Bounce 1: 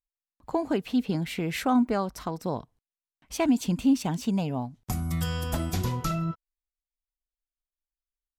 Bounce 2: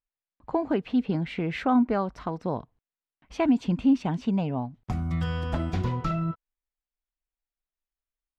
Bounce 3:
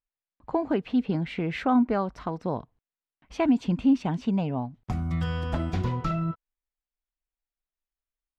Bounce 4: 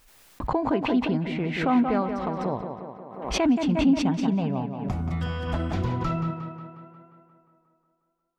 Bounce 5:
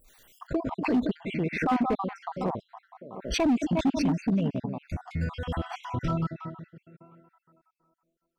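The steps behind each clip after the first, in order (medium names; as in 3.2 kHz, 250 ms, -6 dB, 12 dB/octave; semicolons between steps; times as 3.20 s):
low-pass 2.7 kHz 12 dB/octave; trim +1 dB
no audible change
tape echo 178 ms, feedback 68%, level -6 dB, low-pass 3.6 kHz; swell ahead of each attack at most 69 dB/s
random holes in the spectrogram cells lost 52%; hard clipper -19.5 dBFS, distortion -14 dB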